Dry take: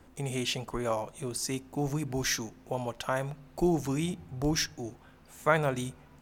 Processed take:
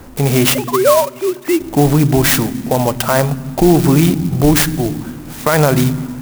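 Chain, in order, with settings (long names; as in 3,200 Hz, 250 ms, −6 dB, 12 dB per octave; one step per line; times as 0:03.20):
0:00.55–0:01.60: three sine waves on the formant tracks
on a send at −21.5 dB: low shelf with overshoot 360 Hz +14 dB, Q 3 + convolution reverb RT60 2.1 s, pre-delay 10 ms
on the sum: boost into a limiter +21 dB
converter with an unsteady clock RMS 0.06 ms
level −1 dB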